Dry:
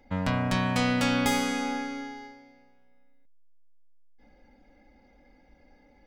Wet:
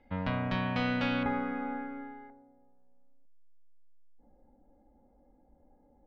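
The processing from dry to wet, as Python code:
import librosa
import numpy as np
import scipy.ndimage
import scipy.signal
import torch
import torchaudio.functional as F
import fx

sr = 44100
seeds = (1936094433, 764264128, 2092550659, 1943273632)

y = fx.lowpass(x, sr, hz=fx.steps((0.0, 3700.0), (1.23, 1800.0), (2.3, 1000.0)), slope=24)
y = fx.comb_fb(y, sr, f0_hz=78.0, decay_s=0.51, harmonics='all', damping=0.0, mix_pct=50)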